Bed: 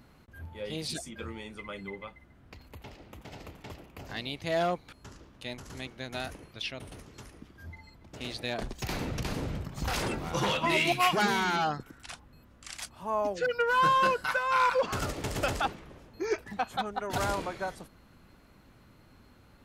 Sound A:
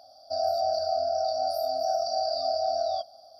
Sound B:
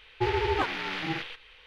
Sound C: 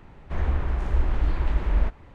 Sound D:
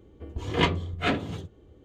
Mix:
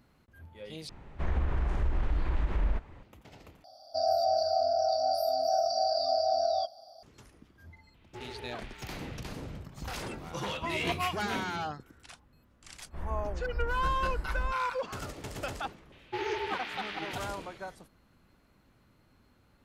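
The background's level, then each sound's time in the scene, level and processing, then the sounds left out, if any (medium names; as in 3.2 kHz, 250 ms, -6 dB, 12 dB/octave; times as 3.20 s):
bed -7 dB
0.89 s: replace with C -2 dB + compression 3:1, threshold -22 dBFS
3.64 s: replace with A -0.5 dB
7.94 s: add B -17 dB + hard clipper -20.5 dBFS
10.26 s: add D -12 dB
12.63 s: add C -11.5 dB + low-pass 2.1 kHz
15.92 s: add B -5.5 dB + high-pass 400 Hz 6 dB/octave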